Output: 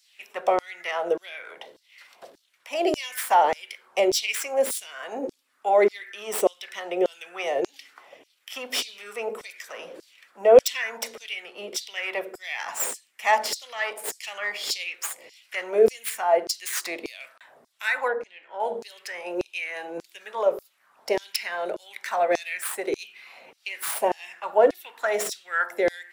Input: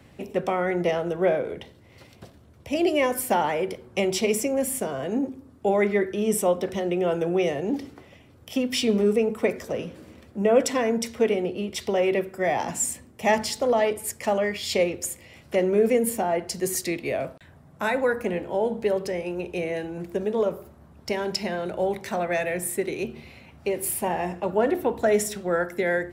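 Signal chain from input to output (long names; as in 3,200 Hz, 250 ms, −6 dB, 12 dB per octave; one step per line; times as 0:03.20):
stylus tracing distortion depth 0.071 ms
0:18.08–0:18.60: head-to-tape spacing loss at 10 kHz 25 dB
auto-filter high-pass saw down 1.7 Hz 380–5,500 Hz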